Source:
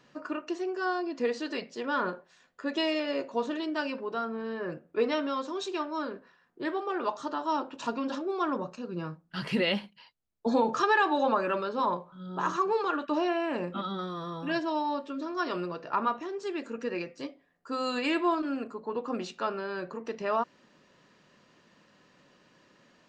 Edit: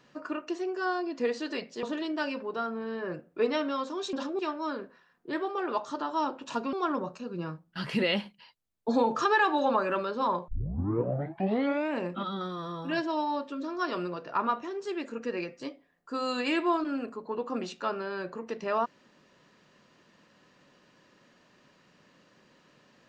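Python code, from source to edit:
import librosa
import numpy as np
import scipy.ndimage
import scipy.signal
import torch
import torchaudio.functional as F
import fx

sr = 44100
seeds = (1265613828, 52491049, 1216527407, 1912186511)

y = fx.edit(x, sr, fx.cut(start_s=1.83, length_s=1.58),
    fx.move(start_s=8.05, length_s=0.26, to_s=5.71),
    fx.tape_start(start_s=12.06, length_s=1.5), tone=tone)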